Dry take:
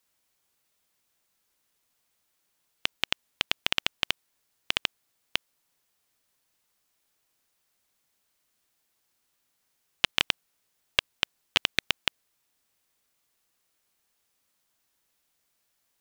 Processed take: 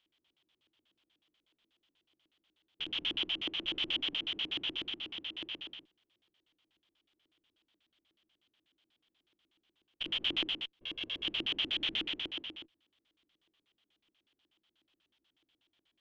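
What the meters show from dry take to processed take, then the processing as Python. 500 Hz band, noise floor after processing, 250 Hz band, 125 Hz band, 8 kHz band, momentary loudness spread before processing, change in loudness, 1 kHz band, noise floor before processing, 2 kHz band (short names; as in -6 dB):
-6.5 dB, under -85 dBFS, +1.5 dB, -8.5 dB, under -20 dB, 8 LU, -5.5 dB, -13.5 dB, -76 dBFS, -9.0 dB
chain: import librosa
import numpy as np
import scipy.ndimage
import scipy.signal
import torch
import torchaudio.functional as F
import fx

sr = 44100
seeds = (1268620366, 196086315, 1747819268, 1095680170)

p1 = fx.spec_steps(x, sr, hold_ms=400)
p2 = fx.tube_stage(p1, sr, drive_db=42.0, bias=0.7)
p3 = p2 + fx.echo_multitap(p2, sr, ms=(62, 144, 243), db=(-6.5, -3.5, -4.0), dry=0)
y = fx.filter_lfo_lowpass(p3, sr, shape='square', hz=8.2, low_hz=320.0, high_hz=3200.0, q=6.8)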